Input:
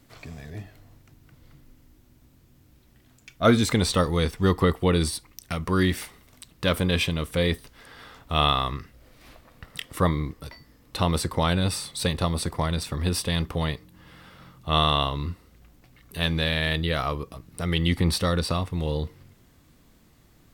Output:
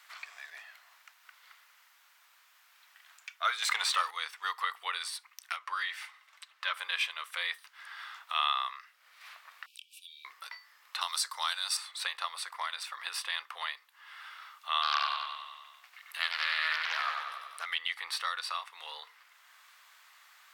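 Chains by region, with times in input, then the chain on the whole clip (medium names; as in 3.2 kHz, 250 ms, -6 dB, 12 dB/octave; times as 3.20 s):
3.62–4.11 s: high-pass 43 Hz + waveshaping leveller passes 2
5.56–6.79 s: treble shelf 7.6 kHz -11 dB + comb of notches 240 Hz
9.66–10.25 s: brick-wall FIR high-pass 2.3 kHz + compression 2:1, threshold -55 dBFS
11.01–11.77 s: high-pass 680 Hz + resonant high shelf 3.6 kHz +10.5 dB, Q 1.5
14.82–17.66 s: brick-wall FIR high-pass 300 Hz + feedback delay 95 ms, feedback 57%, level -4 dB + loudspeaker Doppler distortion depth 0.32 ms
whole clip: inverse Chebyshev high-pass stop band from 250 Hz, stop band 70 dB; treble shelf 3.9 kHz -12 dB; three bands compressed up and down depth 40%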